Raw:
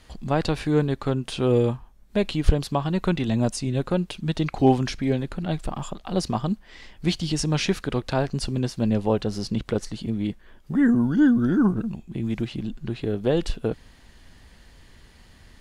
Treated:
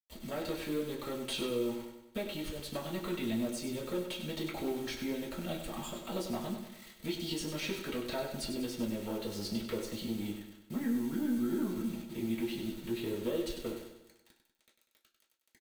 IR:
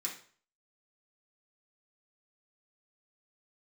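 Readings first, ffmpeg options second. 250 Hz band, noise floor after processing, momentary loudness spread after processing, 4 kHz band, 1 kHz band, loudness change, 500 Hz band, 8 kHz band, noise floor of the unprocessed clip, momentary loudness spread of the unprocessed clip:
-12.0 dB, -76 dBFS, 8 LU, -7.0 dB, -14.5 dB, -12.0 dB, -11.0 dB, -7.5 dB, -52 dBFS, 10 LU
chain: -filter_complex "[0:a]agate=range=0.398:threshold=0.0112:ratio=16:detection=peak,equalizer=f=350:t=o:w=0.26:g=4,acrossover=split=130|700|2200[s0][s1][s2][s3];[s3]alimiter=limit=0.0668:level=0:latency=1:release=281[s4];[s0][s1][s2][s4]amix=inputs=4:normalize=0,acompressor=threshold=0.0631:ratio=12,aeval=exprs='(tanh(10*val(0)+0.15)-tanh(0.15))/10':c=same,acrusher=bits=7:mix=0:aa=0.000001,aecho=1:1:97|194|291|388|485|582:0.398|0.199|0.0995|0.0498|0.0249|0.0124[s5];[1:a]atrim=start_sample=2205,asetrate=79380,aresample=44100[s6];[s5][s6]afir=irnorm=-1:irlink=0,volume=1.19"

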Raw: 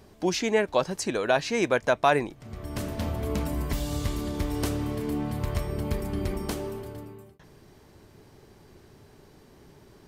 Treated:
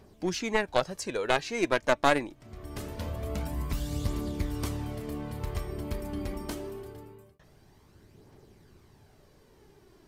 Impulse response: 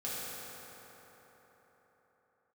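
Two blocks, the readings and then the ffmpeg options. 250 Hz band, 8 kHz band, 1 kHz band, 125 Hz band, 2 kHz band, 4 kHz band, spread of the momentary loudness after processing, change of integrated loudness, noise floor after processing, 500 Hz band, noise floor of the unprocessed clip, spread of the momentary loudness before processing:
-4.5 dB, -4.0 dB, -2.5 dB, -4.0 dB, -1.5 dB, -2.0 dB, 14 LU, -3.5 dB, -59 dBFS, -4.0 dB, -55 dBFS, 12 LU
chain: -af "aeval=exprs='0.355*(cos(1*acos(clip(val(0)/0.355,-1,1)))-cos(1*PI/2))+0.0501*(cos(3*acos(clip(val(0)/0.355,-1,1)))-cos(3*PI/2))+0.0708*(cos(4*acos(clip(val(0)/0.355,-1,1)))-cos(4*PI/2))+0.0316*(cos(6*acos(clip(val(0)/0.355,-1,1)))-cos(6*PI/2))':c=same,aphaser=in_gain=1:out_gain=1:delay=3.7:decay=0.38:speed=0.24:type=triangular,volume=0.891"

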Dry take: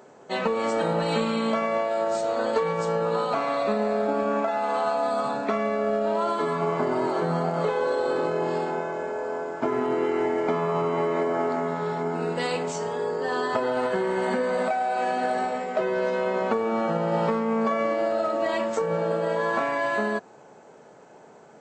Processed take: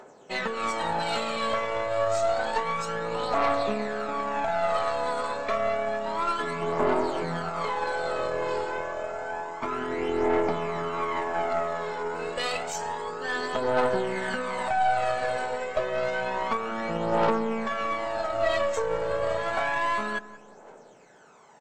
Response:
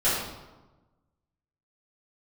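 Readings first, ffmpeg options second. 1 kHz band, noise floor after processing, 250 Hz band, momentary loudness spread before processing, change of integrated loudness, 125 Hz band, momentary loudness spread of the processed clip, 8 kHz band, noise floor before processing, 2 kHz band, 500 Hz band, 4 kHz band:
-0.5 dB, -50 dBFS, -6.0 dB, 3 LU, -2.5 dB, -5.5 dB, 7 LU, +2.0 dB, -50 dBFS, +1.0 dB, -3.5 dB, +2.0 dB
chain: -filter_complex "[0:a]lowshelf=f=450:g=-11.5,bandreject=f=4700:w=22,asoftclip=type=tanh:threshold=0.237,aphaser=in_gain=1:out_gain=1:delay=2.1:decay=0.57:speed=0.29:type=triangular,aeval=exprs='0.266*(cos(1*acos(clip(val(0)/0.266,-1,1)))-cos(1*PI/2))+0.0211*(cos(6*acos(clip(val(0)/0.266,-1,1)))-cos(6*PI/2))':c=same,asplit=2[s0][s1];[s1]adelay=181,lowpass=f=1100:p=1,volume=0.211,asplit=2[s2][s3];[s3]adelay=181,lowpass=f=1100:p=1,volume=0.47,asplit=2[s4][s5];[s5]adelay=181,lowpass=f=1100:p=1,volume=0.47,asplit=2[s6][s7];[s7]adelay=181,lowpass=f=1100:p=1,volume=0.47,asplit=2[s8][s9];[s9]adelay=181,lowpass=f=1100:p=1,volume=0.47[s10];[s2][s4][s6][s8][s10]amix=inputs=5:normalize=0[s11];[s0][s11]amix=inputs=2:normalize=0"

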